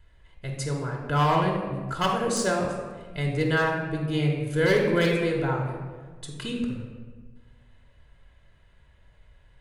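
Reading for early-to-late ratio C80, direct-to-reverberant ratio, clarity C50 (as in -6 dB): 5.0 dB, -0.5 dB, 3.0 dB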